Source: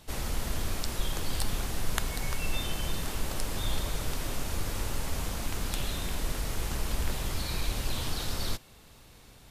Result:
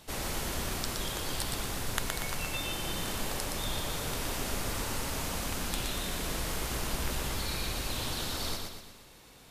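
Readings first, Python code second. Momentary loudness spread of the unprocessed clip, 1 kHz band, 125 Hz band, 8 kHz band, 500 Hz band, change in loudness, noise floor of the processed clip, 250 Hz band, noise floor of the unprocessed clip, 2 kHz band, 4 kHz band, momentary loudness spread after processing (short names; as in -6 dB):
2 LU, +2.0 dB, -3.5 dB, +2.0 dB, +1.5 dB, +0.5 dB, -54 dBFS, 0.0 dB, -54 dBFS, +1.5 dB, +1.5 dB, 1 LU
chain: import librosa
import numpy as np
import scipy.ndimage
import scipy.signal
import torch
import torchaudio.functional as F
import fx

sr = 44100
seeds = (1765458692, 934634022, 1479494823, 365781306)

y = fx.low_shelf(x, sr, hz=110.0, db=-9.0)
y = fx.rider(y, sr, range_db=10, speed_s=0.5)
y = fx.echo_feedback(y, sr, ms=119, feedback_pct=49, wet_db=-4)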